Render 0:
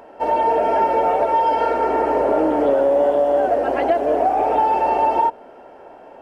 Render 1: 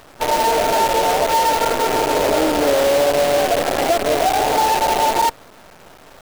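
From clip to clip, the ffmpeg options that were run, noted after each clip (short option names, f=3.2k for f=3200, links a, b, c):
-af "acrusher=bits=4:dc=4:mix=0:aa=0.000001"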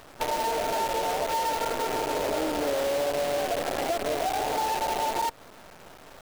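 -af "acompressor=threshold=-21dB:ratio=4,volume=-4.5dB"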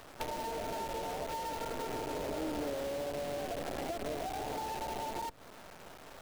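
-filter_complex "[0:a]acrossover=split=300[a][b];[b]acompressor=threshold=-35dB:ratio=4[c];[a][c]amix=inputs=2:normalize=0,volume=-3dB"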